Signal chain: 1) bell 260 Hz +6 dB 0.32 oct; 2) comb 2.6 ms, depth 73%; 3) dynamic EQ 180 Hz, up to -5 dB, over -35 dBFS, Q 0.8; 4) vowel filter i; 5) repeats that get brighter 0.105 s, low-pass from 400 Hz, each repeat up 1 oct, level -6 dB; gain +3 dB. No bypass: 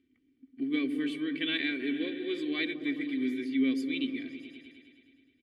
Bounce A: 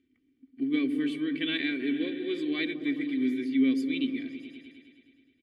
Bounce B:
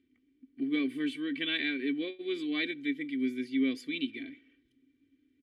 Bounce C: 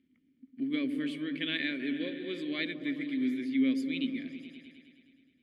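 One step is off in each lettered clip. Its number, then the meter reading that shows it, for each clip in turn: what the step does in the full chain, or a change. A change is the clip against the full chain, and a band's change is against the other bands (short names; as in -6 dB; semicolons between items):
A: 3, loudness change +2.5 LU; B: 5, echo-to-direct -9.0 dB to none; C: 2, 125 Hz band +6.0 dB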